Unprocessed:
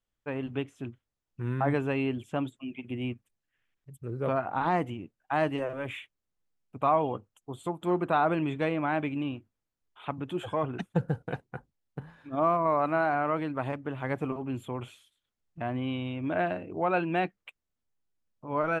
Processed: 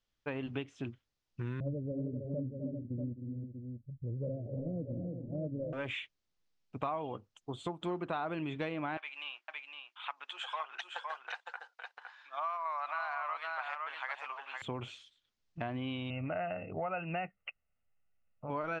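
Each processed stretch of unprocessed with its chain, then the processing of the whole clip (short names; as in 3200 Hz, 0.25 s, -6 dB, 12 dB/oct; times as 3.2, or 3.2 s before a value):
1.6–5.73 Chebyshev low-pass 590 Hz, order 8 + comb 1.3 ms, depth 62% + tapped delay 0.256/0.313/0.391/0.64 s -13.5/-9/-14/-10.5 dB
8.97–14.62 HPF 900 Hz 24 dB/oct + echo 0.511 s -6 dB
16.1–18.5 comb 1.5 ms, depth 68% + compressor 1.5:1, threshold -30 dBFS + brick-wall FIR low-pass 3100 Hz
whole clip: LPF 5500 Hz 24 dB/oct; high shelf 3600 Hz +12 dB; compressor 4:1, threshold -35 dBFS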